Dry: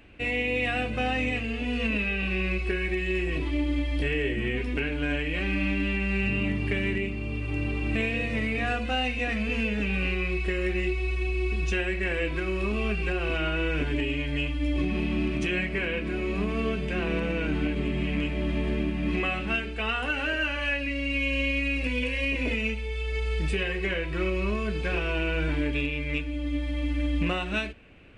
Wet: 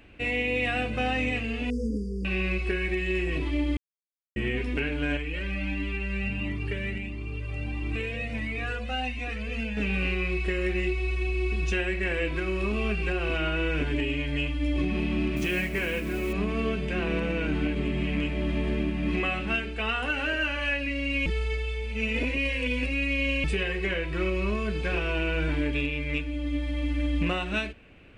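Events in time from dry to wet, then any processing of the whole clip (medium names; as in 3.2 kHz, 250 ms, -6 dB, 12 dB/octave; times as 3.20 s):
1.70–2.25 s: brick-wall FIR band-stop 540–4500 Hz
3.77–4.36 s: mute
5.17–9.77 s: Shepard-style flanger rising 1.5 Hz
15.36–16.33 s: modulation noise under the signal 22 dB
21.26–23.44 s: reverse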